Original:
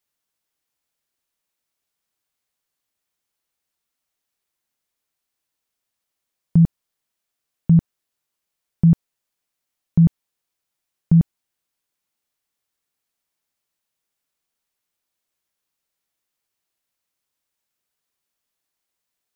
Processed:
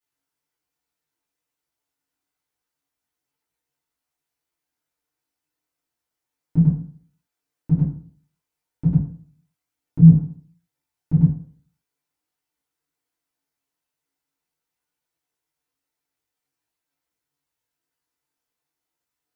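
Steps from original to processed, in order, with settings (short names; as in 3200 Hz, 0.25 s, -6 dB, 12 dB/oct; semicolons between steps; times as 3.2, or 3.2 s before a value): FDN reverb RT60 0.5 s, low-frequency decay 1.05×, high-frequency decay 0.45×, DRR -9.5 dB; chorus voices 4, 1.1 Hz, delay 18 ms, depth 3.6 ms; gain -8 dB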